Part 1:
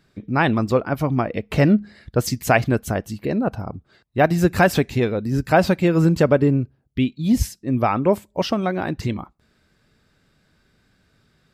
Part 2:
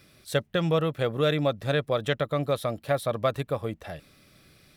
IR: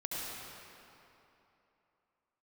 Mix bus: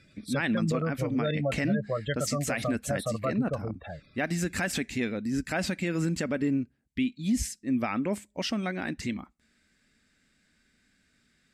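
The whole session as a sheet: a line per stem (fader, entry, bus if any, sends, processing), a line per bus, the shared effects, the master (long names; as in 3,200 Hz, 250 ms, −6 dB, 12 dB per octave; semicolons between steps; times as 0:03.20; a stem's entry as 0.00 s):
−8.5 dB, 0.00 s, no send, octave-band graphic EQ 125/250/1,000/2,000/8,000 Hz −9/+10/−6/+9/+11 dB; de-essing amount 35%
0.0 dB, 0.00 s, no send, gate on every frequency bin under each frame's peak −15 dB strong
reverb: not used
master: low-pass filter 12,000 Hz 12 dB per octave; parametric band 380 Hz −6.5 dB 1.2 octaves; brickwall limiter −19 dBFS, peak gain reduction 11.5 dB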